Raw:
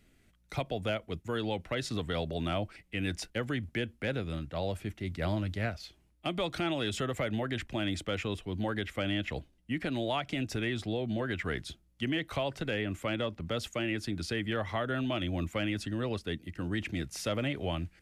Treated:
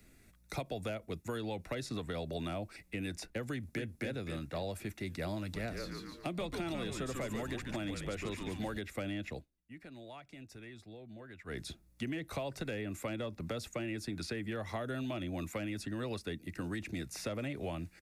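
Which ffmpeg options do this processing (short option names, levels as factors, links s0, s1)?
-filter_complex "[0:a]asplit=2[s0][s1];[s1]afade=t=in:st=3.51:d=0.01,afade=t=out:st=3.94:d=0.01,aecho=0:1:260|520|780|1040|1300:0.668344|0.267338|0.106935|0.042774|0.0171096[s2];[s0][s2]amix=inputs=2:normalize=0,asettb=1/sr,asplit=3[s3][s4][s5];[s3]atrim=end=5.394[s6];[s4]atrim=start=5.39:end=8.78,asetpts=PTS-STARTPTS,afade=t=in:d=0.004:c=qsin,afade=t=out:st=3.386:d=0.004:c=qsin,asplit=6[s7][s8][s9][s10][s11][s12];[s8]adelay=143,afreqshift=-140,volume=0.562[s13];[s9]adelay=286,afreqshift=-280,volume=0.237[s14];[s10]adelay=429,afreqshift=-420,volume=0.0989[s15];[s11]adelay=572,afreqshift=-560,volume=0.0417[s16];[s12]adelay=715,afreqshift=-700,volume=0.0176[s17];[s7][s13][s14][s15][s16][s17]amix=inputs=6:normalize=0,atrim=end_sample=149499[s18];[s5]atrim=start=8.776[s19];[s6][s18]acrossfade=d=0.004:c1=hsin:c2=qsin[s20];[s20][s19]acrossfade=d=0.004:c1=qsin:c2=hsin,asplit=3[s21][s22][s23];[s21]atrim=end=9.46,asetpts=PTS-STARTPTS,afade=t=out:st=9.28:d=0.18:silence=0.0944061[s24];[s22]atrim=start=9.46:end=11.46,asetpts=PTS-STARTPTS,volume=0.0944[s25];[s23]atrim=start=11.46,asetpts=PTS-STARTPTS,afade=t=in:d=0.18:silence=0.0944061[s26];[s24][s25][s26]concat=n=3:v=0:a=1,acrossover=split=150|720|3400[s27][s28][s29][s30];[s27]acompressor=threshold=0.00282:ratio=4[s31];[s28]acompressor=threshold=0.00794:ratio=4[s32];[s29]acompressor=threshold=0.00316:ratio=4[s33];[s30]acompressor=threshold=0.002:ratio=4[s34];[s31][s32][s33][s34]amix=inputs=4:normalize=0,highshelf=f=7500:g=7,bandreject=f=3100:w=5.3,volume=1.41"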